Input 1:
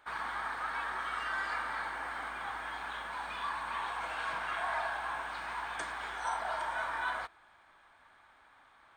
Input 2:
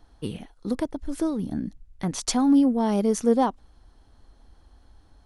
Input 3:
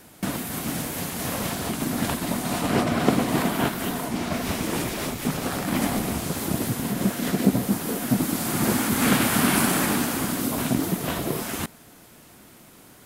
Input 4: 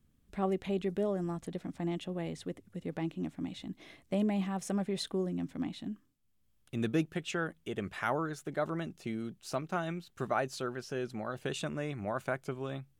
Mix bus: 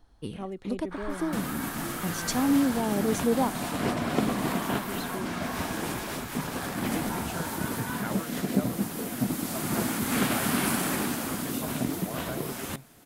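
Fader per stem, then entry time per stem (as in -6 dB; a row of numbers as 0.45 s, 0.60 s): -3.5 dB, -5.0 dB, -6.0 dB, -5.5 dB; 0.85 s, 0.00 s, 1.10 s, 0.00 s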